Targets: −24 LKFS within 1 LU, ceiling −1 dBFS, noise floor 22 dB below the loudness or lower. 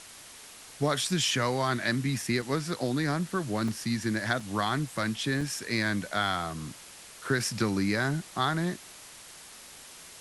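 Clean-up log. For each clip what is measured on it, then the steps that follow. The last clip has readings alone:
number of dropouts 4; longest dropout 3.8 ms; background noise floor −49 dBFS; target noise floor −52 dBFS; integrated loudness −29.5 LKFS; sample peak −11.5 dBFS; target loudness −24.0 LKFS
→ repair the gap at 0:02.42/0:03.68/0:04.40/0:05.41, 3.8 ms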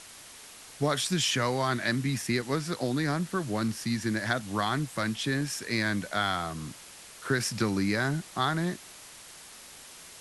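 number of dropouts 0; background noise floor −49 dBFS; target noise floor −52 dBFS
→ broadband denoise 6 dB, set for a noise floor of −49 dBFS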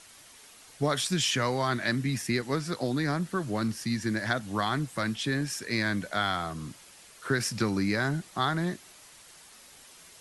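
background noise floor −53 dBFS; integrated loudness −29.5 LKFS; sample peak −11.5 dBFS; target loudness −24.0 LKFS
→ level +5.5 dB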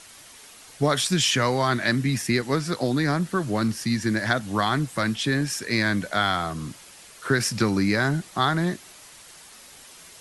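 integrated loudness −24.0 LKFS; sample peak −6.0 dBFS; background noise floor −48 dBFS

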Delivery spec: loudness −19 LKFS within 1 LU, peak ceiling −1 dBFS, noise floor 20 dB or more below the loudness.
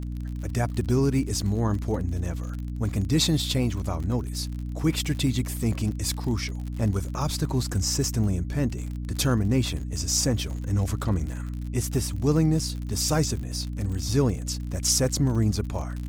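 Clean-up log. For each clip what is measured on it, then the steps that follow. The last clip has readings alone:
crackle rate 45 per second; mains hum 60 Hz; hum harmonics up to 300 Hz; level of the hum −29 dBFS; integrated loudness −26.5 LKFS; sample peak −10.0 dBFS; target loudness −19.0 LKFS
→ click removal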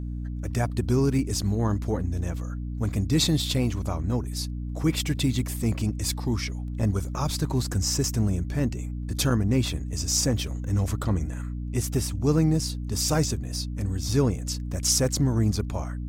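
crackle rate 0.25 per second; mains hum 60 Hz; hum harmonics up to 300 Hz; level of the hum −29 dBFS
→ hum removal 60 Hz, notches 5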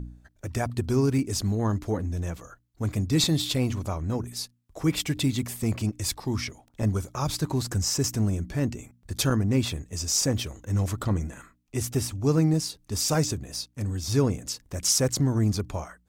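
mains hum none found; integrated loudness −27.0 LKFS; sample peak −11.0 dBFS; target loudness −19.0 LKFS
→ level +8 dB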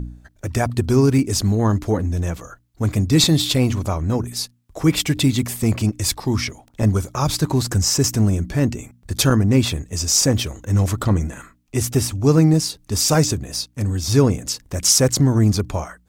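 integrated loudness −19.0 LKFS; sample peak −3.0 dBFS; background noise floor −57 dBFS

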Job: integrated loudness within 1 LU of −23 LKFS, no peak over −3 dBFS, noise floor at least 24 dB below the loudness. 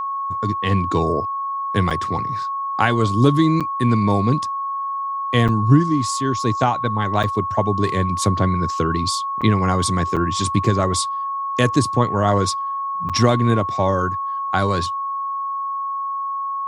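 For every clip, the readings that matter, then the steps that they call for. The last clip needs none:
number of dropouts 7; longest dropout 6.7 ms; interfering tone 1,100 Hz; level of the tone −22 dBFS; integrated loudness −20.0 LKFS; sample peak −1.5 dBFS; target loudness −23.0 LKFS
→ repair the gap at 0:01.90/0:03.60/0:05.48/0:07.23/0:09.41/0:10.16/0:13.09, 6.7 ms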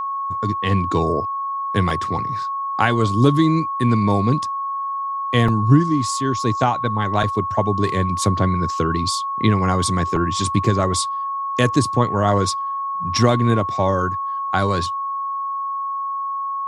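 number of dropouts 0; interfering tone 1,100 Hz; level of the tone −22 dBFS
→ notch filter 1,100 Hz, Q 30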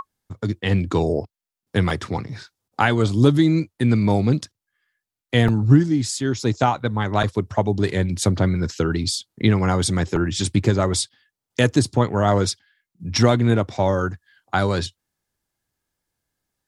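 interfering tone none found; integrated loudness −21.0 LKFS; sample peak −2.0 dBFS; target loudness −23.0 LKFS
→ level −2 dB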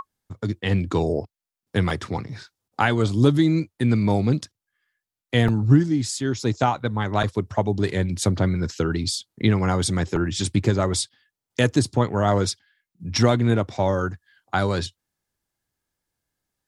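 integrated loudness −23.0 LKFS; sample peak −4.0 dBFS; background noise floor −88 dBFS

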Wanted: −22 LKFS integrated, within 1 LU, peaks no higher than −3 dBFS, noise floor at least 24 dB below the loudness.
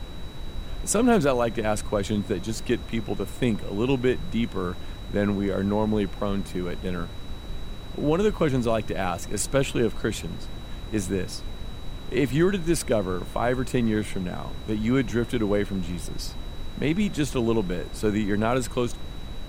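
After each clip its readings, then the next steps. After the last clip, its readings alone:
interfering tone 3,900 Hz; level of the tone −48 dBFS; background noise floor −38 dBFS; target noise floor −51 dBFS; integrated loudness −26.5 LKFS; sample peak −9.5 dBFS; target loudness −22.0 LKFS
→ notch filter 3,900 Hz, Q 30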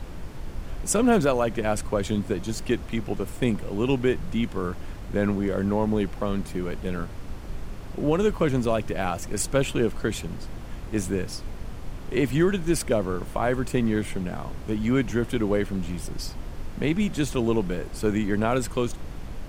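interfering tone none found; background noise floor −38 dBFS; target noise floor −51 dBFS
→ noise reduction from a noise print 13 dB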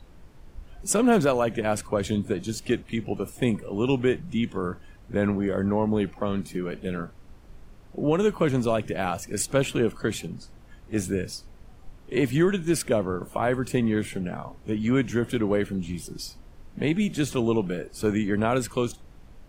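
background noise floor −50 dBFS; target noise floor −51 dBFS
→ noise reduction from a noise print 6 dB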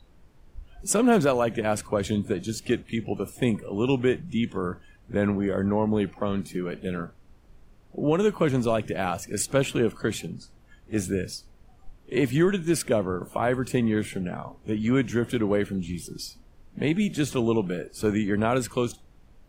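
background noise floor −55 dBFS; integrated loudness −26.5 LKFS; sample peak −10.5 dBFS; target loudness −22.0 LKFS
→ level +4.5 dB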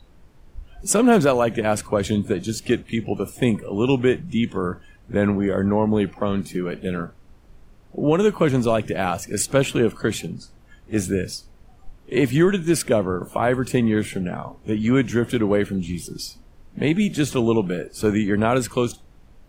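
integrated loudness −22.0 LKFS; sample peak −6.0 dBFS; background noise floor −51 dBFS

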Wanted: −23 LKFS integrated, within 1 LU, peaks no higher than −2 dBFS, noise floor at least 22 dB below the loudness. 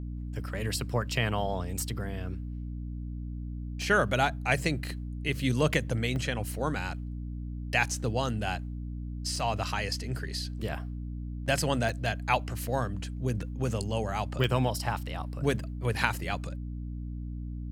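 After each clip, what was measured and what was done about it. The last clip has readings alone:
number of dropouts 5; longest dropout 1.1 ms; mains hum 60 Hz; hum harmonics up to 300 Hz; level of the hum −34 dBFS; integrated loudness −31.5 LKFS; sample peak −7.0 dBFS; target loudness −23.0 LKFS
→ repair the gap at 0:03.82/0:06.16/0:09.36/0:11.89/0:14.44, 1.1 ms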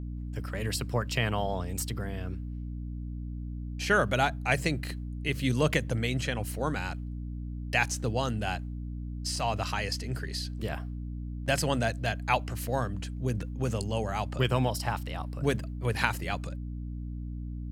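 number of dropouts 0; mains hum 60 Hz; hum harmonics up to 300 Hz; level of the hum −34 dBFS
→ hum removal 60 Hz, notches 5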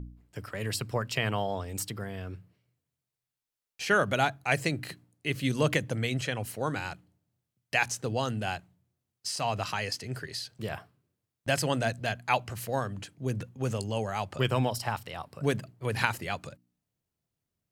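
mains hum none found; integrated loudness −31.5 LKFS; sample peak −7.5 dBFS; target loudness −23.0 LKFS
→ level +8.5 dB
brickwall limiter −2 dBFS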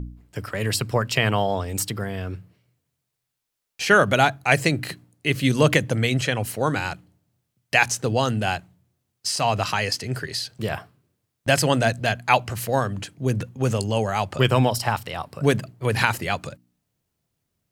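integrated loudness −23.0 LKFS; sample peak −2.0 dBFS; background noise floor −80 dBFS

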